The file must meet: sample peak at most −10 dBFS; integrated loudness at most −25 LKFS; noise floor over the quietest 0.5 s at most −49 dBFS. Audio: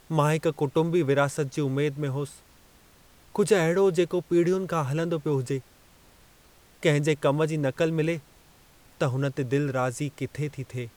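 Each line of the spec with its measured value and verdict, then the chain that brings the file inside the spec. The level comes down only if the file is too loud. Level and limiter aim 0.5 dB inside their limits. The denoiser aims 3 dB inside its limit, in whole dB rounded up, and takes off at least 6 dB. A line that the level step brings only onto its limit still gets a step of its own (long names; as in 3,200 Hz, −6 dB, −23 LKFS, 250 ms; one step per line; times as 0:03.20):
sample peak −9.0 dBFS: out of spec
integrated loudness −26.0 LKFS: in spec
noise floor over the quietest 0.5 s −56 dBFS: in spec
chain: brickwall limiter −10.5 dBFS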